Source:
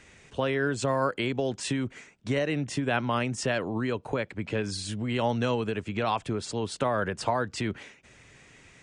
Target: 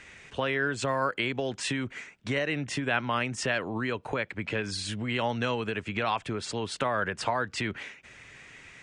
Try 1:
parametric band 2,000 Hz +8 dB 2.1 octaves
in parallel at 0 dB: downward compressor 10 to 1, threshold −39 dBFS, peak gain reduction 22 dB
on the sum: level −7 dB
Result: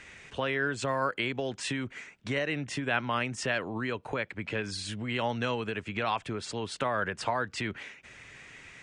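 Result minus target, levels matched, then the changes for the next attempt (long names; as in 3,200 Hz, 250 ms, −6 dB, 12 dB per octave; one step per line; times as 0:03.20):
downward compressor: peak gain reduction +9 dB
change: downward compressor 10 to 1, threshold −29 dBFS, peak gain reduction 13 dB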